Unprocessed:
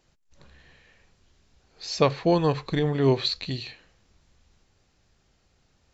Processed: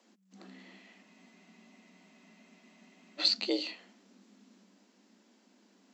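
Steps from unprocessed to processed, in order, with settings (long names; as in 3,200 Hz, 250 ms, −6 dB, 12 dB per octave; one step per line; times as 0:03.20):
frequency shifter +190 Hz
frozen spectrum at 0:01.05, 2.15 s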